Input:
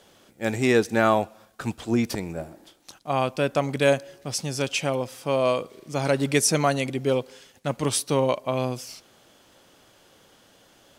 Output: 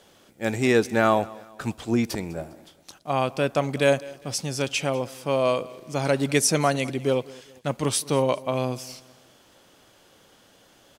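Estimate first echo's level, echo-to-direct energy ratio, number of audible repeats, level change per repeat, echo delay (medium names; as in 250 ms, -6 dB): -21.5 dB, -20.5 dB, 2, -7.5 dB, 202 ms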